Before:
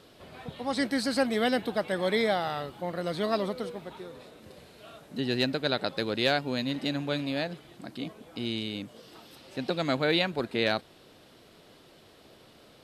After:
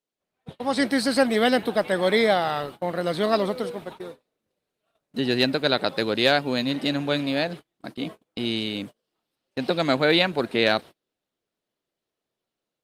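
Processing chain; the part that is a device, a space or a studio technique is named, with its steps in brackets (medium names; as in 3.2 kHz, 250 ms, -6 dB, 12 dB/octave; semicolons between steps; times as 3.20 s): video call (high-pass 150 Hz 6 dB/octave; level rider gain up to 7 dB; gate -36 dBFS, range -35 dB; Opus 32 kbps 48 kHz)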